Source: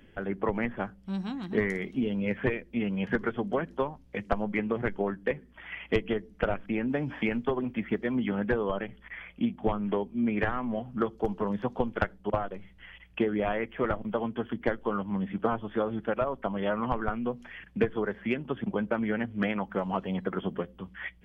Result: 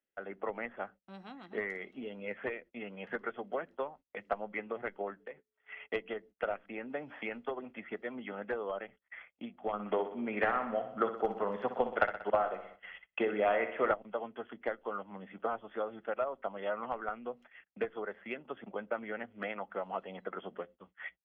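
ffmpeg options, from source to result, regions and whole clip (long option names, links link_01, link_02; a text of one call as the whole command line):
ffmpeg -i in.wav -filter_complex "[0:a]asettb=1/sr,asplit=3[link_01][link_02][link_03];[link_01]atrim=end=5.204[link_04];[link_02]atrim=start=5.2:end=5.89,asetpts=PTS-STARTPTS,afade=type=in:duration=0.004:curve=qsin,afade=type=out:start_time=0.686:duration=0.004:curve=qsin,aeval=exprs='val(0)+0.00178*sin(2*PI*430*n/s)':channel_layout=same,acompressor=threshold=-36dB:ratio=3:attack=3.2:release=140:knee=1:detection=peak[link_05];[link_03]atrim=start=5.886[link_06];[link_04][link_05]acrossfade=duration=0.004:curve1=hsin:curve2=qsin[link_07];[link_07][link_06]acrossfade=duration=0.004:curve1=qsin:curve2=hsin,asettb=1/sr,asplit=3[link_08][link_09][link_10];[link_08]atrim=end=9.734[link_11];[link_09]atrim=start=9.73:end=13.94,asetpts=PTS-STARTPTS,afade=type=in:duration=0.004:curve=qsin,afade=type=out:start_time=4.206:duration=0.004:curve=qsin,acontrast=53,aecho=1:1:62|124|186|248|310|372|434:0.299|0.173|0.1|0.0582|0.0338|0.0196|0.0114,atrim=end_sample=185661[link_12];[link_10]atrim=start=13.936[link_13];[link_11][link_12]acrossfade=duration=0.004:curve1=hsin:curve2=qsin[link_14];[link_14][link_13]acrossfade=duration=0.004:curve1=qsin:curve2=hsin,agate=range=-27dB:threshold=-43dB:ratio=16:detection=peak,acrossover=split=290 3500:gain=0.0794 1 0.2[link_15][link_16][link_17];[link_15][link_16][link_17]amix=inputs=3:normalize=0,aecho=1:1:1.5:0.31,volume=-6dB" out.wav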